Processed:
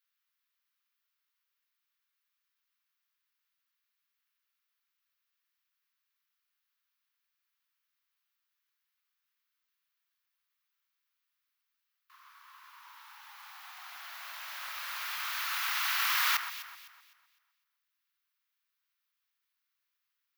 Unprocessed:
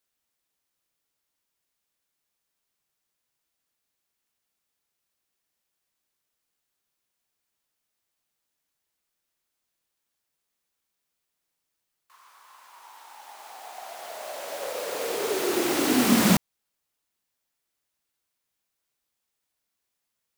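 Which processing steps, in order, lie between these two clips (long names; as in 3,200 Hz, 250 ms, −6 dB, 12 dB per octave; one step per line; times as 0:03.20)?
Butterworth high-pass 1,100 Hz 36 dB per octave
parametric band 8,300 Hz −14.5 dB 0.88 octaves
on a send: delay that swaps between a low-pass and a high-pass 127 ms, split 2,100 Hz, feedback 56%, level −8 dB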